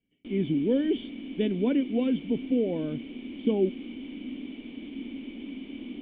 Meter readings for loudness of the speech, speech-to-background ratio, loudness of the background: -28.0 LUFS, 11.0 dB, -39.0 LUFS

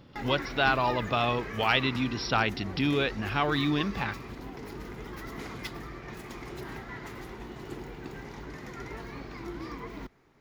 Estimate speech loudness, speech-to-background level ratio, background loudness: -28.0 LUFS, 12.0 dB, -40.0 LUFS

